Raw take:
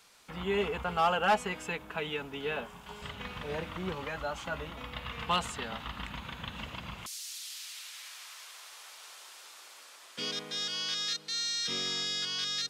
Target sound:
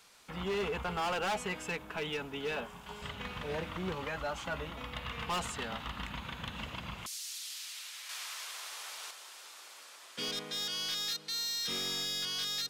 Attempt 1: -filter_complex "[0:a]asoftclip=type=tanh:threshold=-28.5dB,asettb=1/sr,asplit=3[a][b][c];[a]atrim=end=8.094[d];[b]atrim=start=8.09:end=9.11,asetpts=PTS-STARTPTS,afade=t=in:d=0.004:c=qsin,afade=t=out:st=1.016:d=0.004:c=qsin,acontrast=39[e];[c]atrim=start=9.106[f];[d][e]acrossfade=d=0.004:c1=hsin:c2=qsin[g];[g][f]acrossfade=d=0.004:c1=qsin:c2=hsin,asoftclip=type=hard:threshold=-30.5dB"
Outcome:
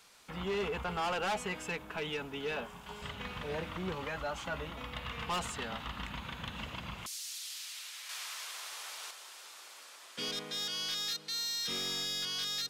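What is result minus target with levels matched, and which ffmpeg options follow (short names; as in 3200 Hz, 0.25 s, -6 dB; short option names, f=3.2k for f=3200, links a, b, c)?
soft clip: distortion +11 dB
-filter_complex "[0:a]asoftclip=type=tanh:threshold=-19dB,asettb=1/sr,asplit=3[a][b][c];[a]atrim=end=8.094[d];[b]atrim=start=8.09:end=9.11,asetpts=PTS-STARTPTS,afade=t=in:d=0.004:c=qsin,afade=t=out:st=1.016:d=0.004:c=qsin,acontrast=39[e];[c]atrim=start=9.106[f];[d][e]acrossfade=d=0.004:c1=hsin:c2=qsin[g];[g][f]acrossfade=d=0.004:c1=qsin:c2=hsin,asoftclip=type=hard:threshold=-30.5dB"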